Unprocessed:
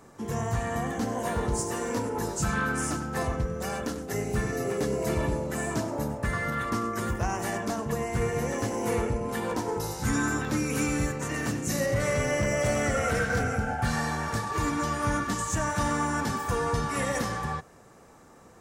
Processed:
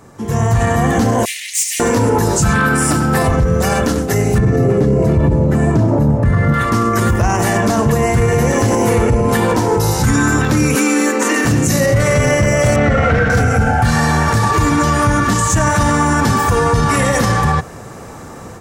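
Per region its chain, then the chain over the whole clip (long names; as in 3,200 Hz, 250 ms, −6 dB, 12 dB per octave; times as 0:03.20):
0:01.25–0:01.80: lower of the sound and its delayed copy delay 4.4 ms + Butterworth high-pass 2,000 Hz 72 dB per octave
0:02.54–0:03.31: high-pass filter 91 Hz + high-shelf EQ 11,000 Hz +6.5 dB + notch filter 6,400 Hz, Q 6.3
0:04.38–0:06.54: high-pass filter 95 Hz + spectral tilt −3.5 dB per octave
0:10.75–0:11.45: Butterworth high-pass 210 Hz 96 dB per octave + notch filter 660 Hz, Q 5.8
0:12.76–0:13.30: variable-slope delta modulation 64 kbit/s + low-pass filter 2,700 Hz + double-tracking delay 27 ms −11 dB
whole clip: parametric band 100 Hz +6.5 dB 1.3 octaves; automatic gain control; boost into a limiter +13 dB; level −4.5 dB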